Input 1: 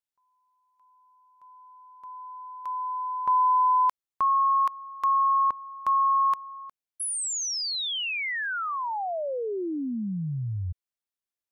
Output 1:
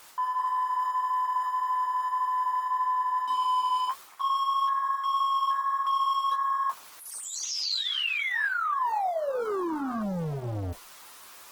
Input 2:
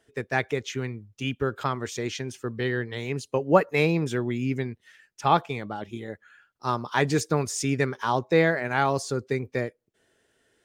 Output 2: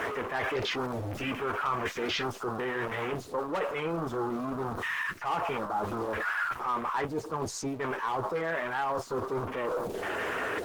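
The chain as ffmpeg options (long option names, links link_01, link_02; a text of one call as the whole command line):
ffmpeg -i in.wav -filter_complex "[0:a]aeval=exprs='val(0)+0.5*0.106*sgn(val(0))':channel_layout=same,afwtdn=0.0447,acrossover=split=4500[link_01][link_02];[link_02]acompressor=threshold=-47dB:ratio=4:attack=1:release=60[link_03];[link_01][link_03]amix=inputs=2:normalize=0,equalizer=frequency=1100:width_type=o:width=0.94:gain=9.5,asoftclip=type=hard:threshold=-8dB,bass=frequency=250:gain=-8,treble=frequency=4000:gain=4,flanger=delay=9.8:depth=2.7:regen=-44:speed=1.7:shape=sinusoidal,areverse,acompressor=threshold=-25dB:ratio=5:attack=0.98:release=222:knee=1:detection=rms,areverse" -ar 48000 -c:a libopus -b:a 16k out.opus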